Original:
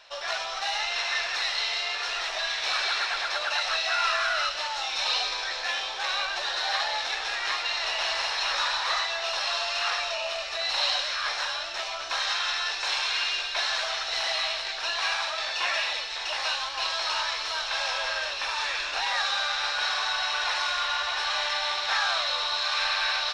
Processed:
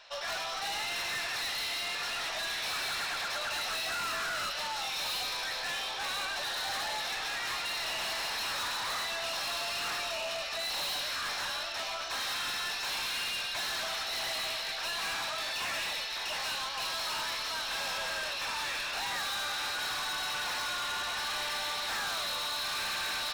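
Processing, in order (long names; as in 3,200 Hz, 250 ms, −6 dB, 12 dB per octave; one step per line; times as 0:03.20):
hard clipping −31 dBFS, distortion −7 dB
level −1.5 dB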